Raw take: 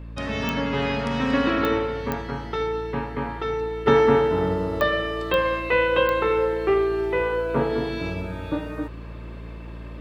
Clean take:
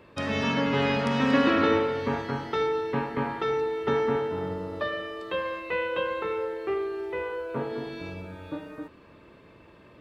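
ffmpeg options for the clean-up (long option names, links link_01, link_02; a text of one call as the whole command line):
ffmpeg -i in.wav -af "adeclick=threshold=4,bandreject=frequency=56.8:width_type=h:width=4,bandreject=frequency=113.6:width_type=h:width=4,bandreject=frequency=170.4:width_type=h:width=4,bandreject=frequency=227.2:width_type=h:width=4,bandreject=frequency=284:width_type=h:width=4,asetnsamples=nb_out_samples=441:pad=0,asendcmd='3.86 volume volume -8.5dB',volume=0dB" out.wav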